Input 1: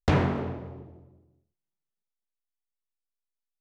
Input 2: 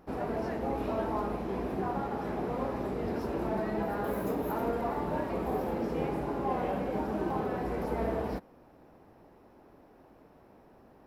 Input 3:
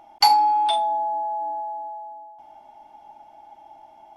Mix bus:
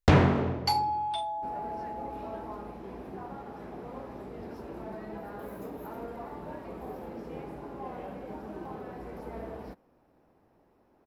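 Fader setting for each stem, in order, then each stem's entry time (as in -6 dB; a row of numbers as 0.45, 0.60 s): +3.0, -8.5, -11.5 dB; 0.00, 1.35, 0.45 s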